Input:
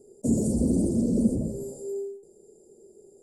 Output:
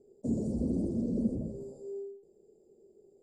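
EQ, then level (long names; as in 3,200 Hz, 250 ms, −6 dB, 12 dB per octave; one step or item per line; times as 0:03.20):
low-pass filter 3,800 Hz 12 dB per octave
−7.5 dB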